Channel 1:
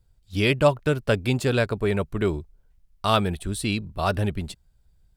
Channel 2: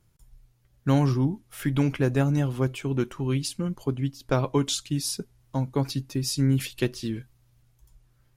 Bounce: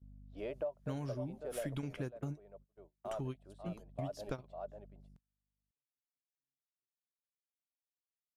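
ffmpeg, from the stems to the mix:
-filter_complex "[0:a]bandpass=f=620:t=q:w=5.2:csg=0,aeval=exprs='val(0)+0.00282*(sin(2*PI*50*n/s)+sin(2*PI*2*50*n/s)/2+sin(2*PI*3*50*n/s)/3+sin(2*PI*4*50*n/s)/4+sin(2*PI*5*50*n/s)/5)':c=same,volume=1.58,afade=t=out:st=1.18:d=0.79:silence=0.375837,afade=t=in:st=3.25:d=0.54:silence=0.473151,asplit=3[s0][s1][s2];[s1]volume=0.335[s3];[1:a]highshelf=f=7100:g=6.5,volume=0.531[s4];[s2]apad=whole_len=368780[s5];[s4][s5]sidechaingate=range=0.00126:threshold=0.00355:ratio=16:detection=peak[s6];[s3]aecho=0:1:546:1[s7];[s0][s6][s7]amix=inputs=3:normalize=0,agate=range=0.0631:threshold=0.00141:ratio=16:detection=peak,lowpass=11000,acompressor=threshold=0.0141:ratio=6"

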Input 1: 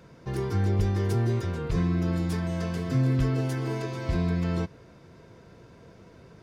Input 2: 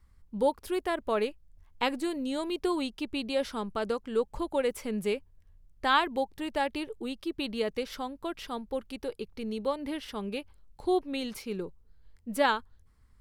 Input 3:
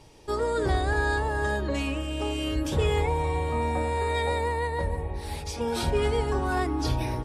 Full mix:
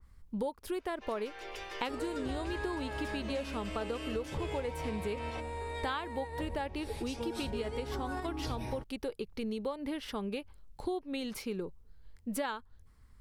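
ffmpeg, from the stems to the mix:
-filter_complex "[0:a]highpass=f=510:w=0.5412,highpass=f=510:w=1.3066,equalizer=f=2700:t=o:w=0.88:g=11.5,adelay=750,volume=0.501[s0];[1:a]adynamicequalizer=threshold=0.00447:dfrequency=2100:dqfactor=0.7:tfrequency=2100:tqfactor=0.7:attack=5:release=100:ratio=0.375:range=1.5:mode=cutabove:tftype=highshelf,volume=1.33,asplit=2[s1][s2];[2:a]adelay=1600,volume=0.501[s3];[s2]apad=whole_len=389857[s4];[s3][s4]sidechaingate=range=0.501:threshold=0.00631:ratio=16:detection=peak[s5];[s0][s1][s5]amix=inputs=3:normalize=0,acompressor=threshold=0.0224:ratio=6"

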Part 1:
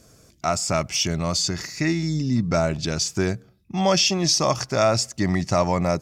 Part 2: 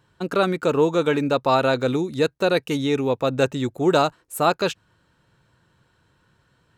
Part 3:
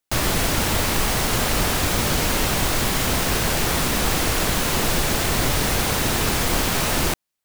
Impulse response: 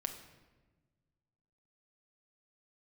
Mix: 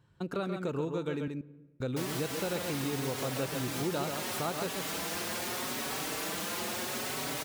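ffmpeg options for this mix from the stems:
-filter_complex "[1:a]equalizer=f=100:w=0.53:g=9,volume=0.299,asplit=3[s0][s1][s2];[s0]atrim=end=1.28,asetpts=PTS-STARTPTS,afade=t=out:st=1.276:d=0.004:c=hsin[s3];[s1]atrim=start=1.28:end=1.8,asetpts=PTS-STARTPTS,volume=0[s4];[s2]atrim=start=1.8,asetpts=PTS-STARTPTS,afade=t=in:d=0.004:c=hsin[s5];[s3][s4][s5]concat=n=3:v=0:a=1,asplit=3[s6][s7][s8];[s7]volume=0.211[s9];[s8]volume=0.531[s10];[2:a]highpass=200,asplit=2[s11][s12];[s12]adelay=4.9,afreqshift=0.76[s13];[s11][s13]amix=inputs=2:normalize=1,adelay=1850,volume=0.501[s14];[3:a]atrim=start_sample=2205[s15];[s9][s15]afir=irnorm=-1:irlink=0[s16];[s10]aecho=0:1:134:1[s17];[s6][s14][s16][s17]amix=inputs=4:normalize=0,acompressor=threshold=0.02:ratio=2.5"

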